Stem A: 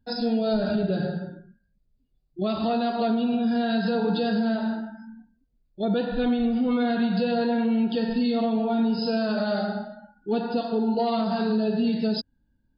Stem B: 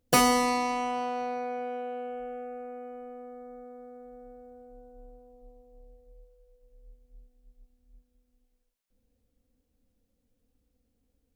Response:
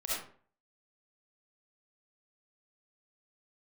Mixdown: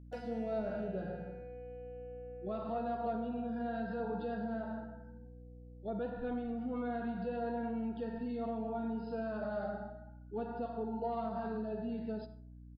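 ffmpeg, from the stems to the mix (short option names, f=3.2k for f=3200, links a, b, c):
-filter_complex "[0:a]lowpass=1.3k,lowshelf=f=370:g=-10.5,adelay=50,volume=-9dB,asplit=2[a][b];[b]volume=-17dB[c];[1:a]acompressor=threshold=-37dB:ratio=4,asplit=3[d][e][f];[d]bandpass=f=530:t=q:w=8,volume=0dB[g];[e]bandpass=f=1.84k:t=q:w=8,volume=-6dB[h];[f]bandpass=f=2.48k:t=q:w=8,volume=-9dB[i];[g][h][i]amix=inputs=3:normalize=0,volume=-3dB[j];[2:a]atrim=start_sample=2205[k];[c][k]afir=irnorm=-1:irlink=0[l];[a][j][l]amix=inputs=3:normalize=0,aeval=exprs='val(0)+0.00282*(sin(2*PI*60*n/s)+sin(2*PI*2*60*n/s)/2+sin(2*PI*3*60*n/s)/3+sin(2*PI*4*60*n/s)/4+sin(2*PI*5*60*n/s)/5)':c=same"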